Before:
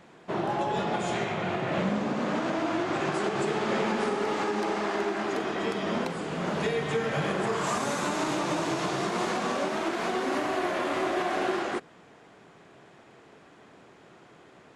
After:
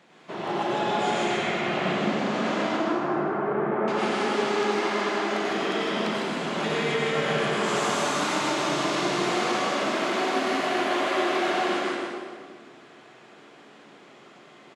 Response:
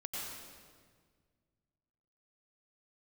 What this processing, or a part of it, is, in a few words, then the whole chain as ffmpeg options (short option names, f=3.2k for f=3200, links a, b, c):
PA in a hall: -filter_complex "[0:a]asettb=1/sr,asplit=3[a][b][c];[a]atrim=end=2.664[d];[b]atrim=start=2.66:end=3.88,asetpts=PTS-STARTPTS,afade=t=in:d=0.004:c=qsin,afade=t=out:st=1.216:d=0.004:c=qsin,lowpass=f=1.5k:w=0.5412,lowpass=f=1.5k:w=1.3066[e];[c]atrim=start=3.876[f];[d][e]acrossfade=d=0.004:c1=hsin:c2=qsin[g];[g][f]acrossfade=d=0.004:c1=qsin:c2=hsin,highpass=160,equalizer=f=3.6k:t=o:w=2:g=5.5,aecho=1:1:155:0.562[h];[1:a]atrim=start_sample=2205[i];[h][i]afir=irnorm=-1:irlink=0"